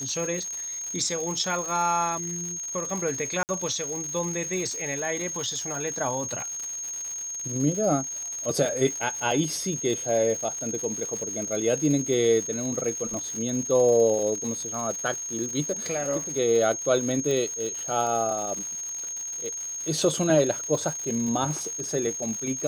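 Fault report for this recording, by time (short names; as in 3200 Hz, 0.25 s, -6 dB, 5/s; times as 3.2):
crackle 230/s -32 dBFS
tone 6500 Hz -31 dBFS
3.43–3.49 gap 59 ms
17.31 pop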